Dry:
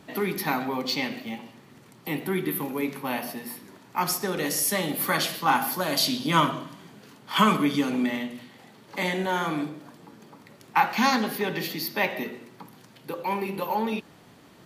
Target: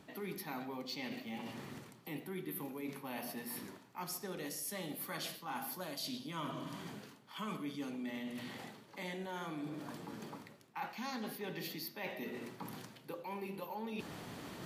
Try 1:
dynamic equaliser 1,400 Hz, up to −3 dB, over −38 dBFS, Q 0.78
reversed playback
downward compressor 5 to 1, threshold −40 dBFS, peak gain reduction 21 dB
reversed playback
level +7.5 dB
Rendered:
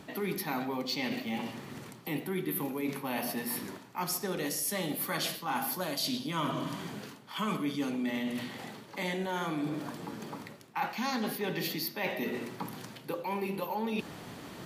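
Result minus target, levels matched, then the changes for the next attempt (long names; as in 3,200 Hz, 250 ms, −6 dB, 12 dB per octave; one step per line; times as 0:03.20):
downward compressor: peak gain reduction −9 dB
change: downward compressor 5 to 1, threshold −51.5 dBFS, peak gain reduction 30 dB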